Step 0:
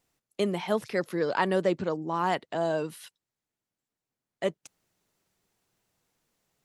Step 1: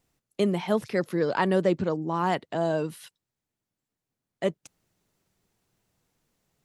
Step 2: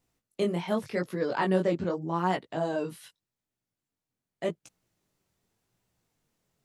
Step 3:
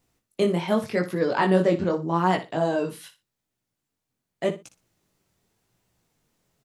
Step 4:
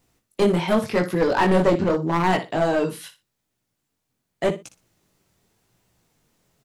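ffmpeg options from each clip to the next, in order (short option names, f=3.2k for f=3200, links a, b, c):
-af "lowshelf=f=280:g=7.5"
-af "flanger=delay=16:depth=7.6:speed=0.85"
-af "aecho=1:1:60|120:0.224|0.0448,volume=5.5dB"
-af "aeval=exprs='clip(val(0),-1,0.0794)':c=same,volume=5dB"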